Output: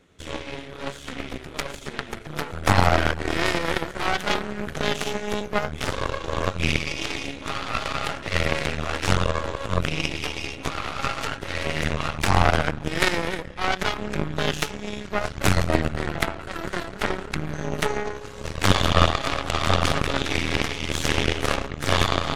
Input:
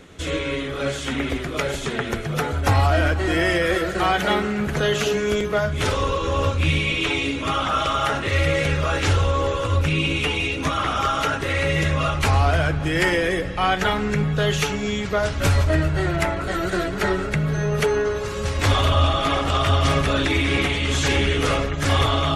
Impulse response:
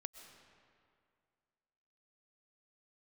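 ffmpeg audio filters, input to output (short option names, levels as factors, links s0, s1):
-af "aeval=exprs='0.376*(cos(1*acos(clip(val(0)/0.376,-1,1)))-cos(1*PI/2))+0.168*(cos(2*acos(clip(val(0)/0.376,-1,1)))-cos(2*PI/2))+0.119*(cos(3*acos(clip(val(0)/0.376,-1,1)))-cos(3*PI/2))+0.0106*(cos(5*acos(clip(val(0)/0.376,-1,1)))-cos(5*PI/2))':c=same,volume=1.12"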